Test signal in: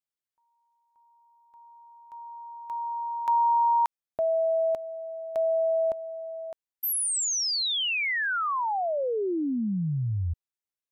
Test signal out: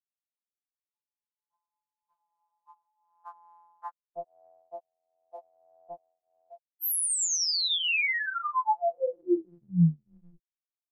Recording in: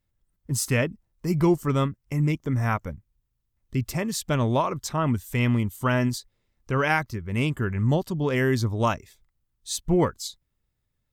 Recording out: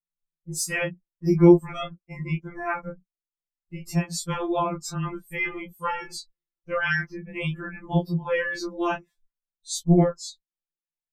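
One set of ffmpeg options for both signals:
-af "afftdn=nr=24:nf=-40,flanger=delay=18.5:depth=2.3:speed=0.51,afftfilt=real='re*2.83*eq(mod(b,8),0)':imag='im*2.83*eq(mod(b,8),0)':win_size=2048:overlap=0.75,volume=5dB"

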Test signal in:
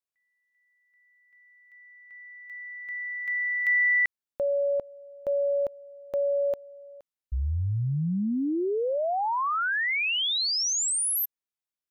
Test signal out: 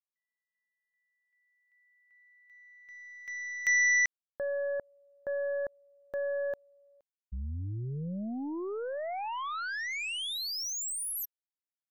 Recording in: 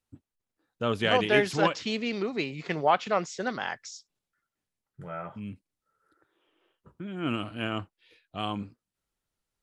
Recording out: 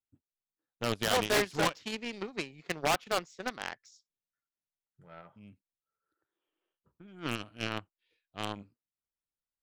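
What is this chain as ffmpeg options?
-af "aeval=exprs='0.126*(abs(mod(val(0)/0.126+3,4)-2)-1)':c=same,aeval=exprs='0.133*(cos(1*acos(clip(val(0)/0.133,-1,1)))-cos(1*PI/2))+0.00299*(cos(2*acos(clip(val(0)/0.133,-1,1)))-cos(2*PI/2))+0.0376*(cos(3*acos(clip(val(0)/0.133,-1,1)))-cos(3*PI/2))':c=same"

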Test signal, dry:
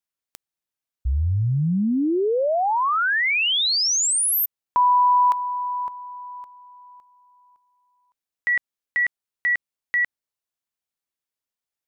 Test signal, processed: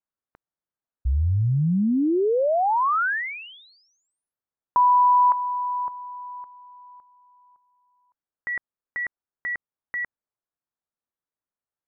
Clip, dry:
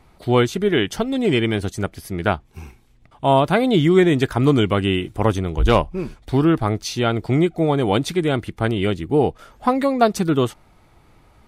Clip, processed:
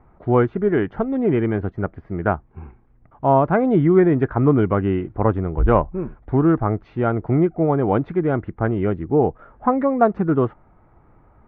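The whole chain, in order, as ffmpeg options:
-af "lowpass=f=1.6k:w=0.5412,lowpass=f=1.6k:w=1.3066"

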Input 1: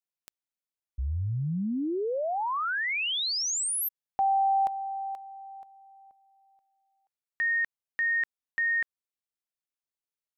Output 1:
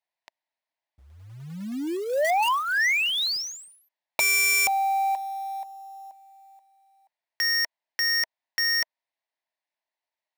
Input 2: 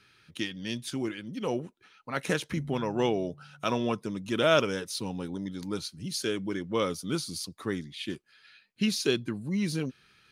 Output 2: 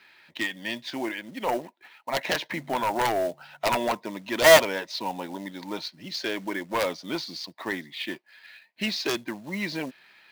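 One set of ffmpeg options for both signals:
-af "highpass=370,equalizer=f=440:t=q:w=4:g=-8,equalizer=f=650:t=q:w=4:g=9,equalizer=f=930:t=q:w=4:g=9,equalizer=f=1.3k:t=q:w=4:g=-9,equalizer=f=1.9k:t=q:w=4:g=7,equalizer=f=3.2k:t=q:w=4:g=-3,lowpass=f=4.5k:w=0.5412,lowpass=f=4.5k:w=1.3066,acrusher=bits=4:mode=log:mix=0:aa=0.000001,aeval=exprs='0.422*(cos(1*acos(clip(val(0)/0.422,-1,1)))-cos(1*PI/2))+0.188*(cos(7*acos(clip(val(0)/0.422,-1,1)))-cos(7*PI/2))':c=same"

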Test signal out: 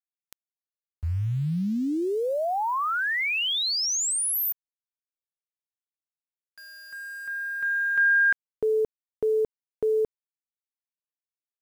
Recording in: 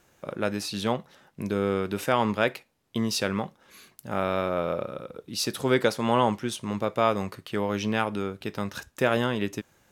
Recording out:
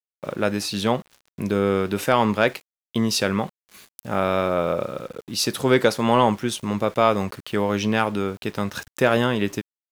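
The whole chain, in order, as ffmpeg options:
-af "acontrast=36,aeval=exprs='val(0)*gte(abs(val(0)),0.0075)':c=same"

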